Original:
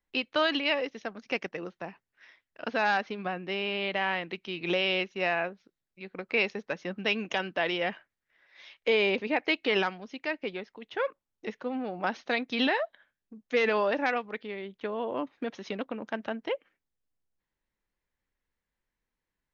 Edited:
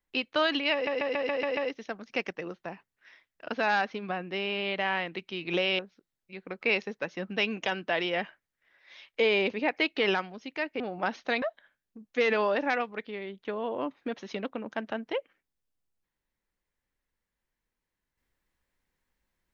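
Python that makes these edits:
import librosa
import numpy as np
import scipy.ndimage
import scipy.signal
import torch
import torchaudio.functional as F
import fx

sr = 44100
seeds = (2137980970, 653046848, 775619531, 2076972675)

y = fx.edit(x, sr, fx.stutter(start_s=0.73, slice_s=0.14, count=7),
    fx.cut(start_s=4.95, length_s=0.52),
    fx.cut(start_s=10.48, length_s=1.33),
    fx.cut(start_s=12.43, length_s=0.35), tone=tone)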